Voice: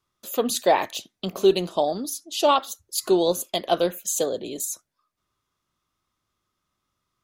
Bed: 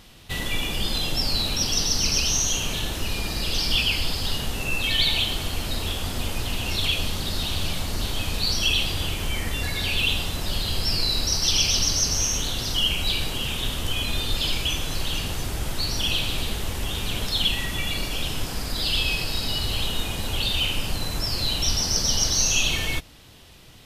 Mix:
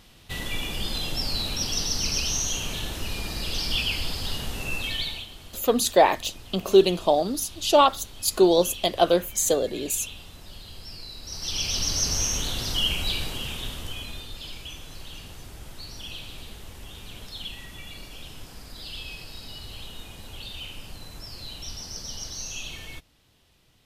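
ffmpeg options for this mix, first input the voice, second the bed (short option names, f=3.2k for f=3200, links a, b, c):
-filter_complex "[0:a]adelay=5300,volume=2dB[a];[1:a]volume=11dB,afade=t=out:st=4.74:d=0.53:silence=0.223872,afade=t=in:st=11.22:d=0.86:silence=0.177828,afade=t=out:st=12.9:d=1.4:silence=0.251189[b];[a][b]amix=inputs=2:normalize=0"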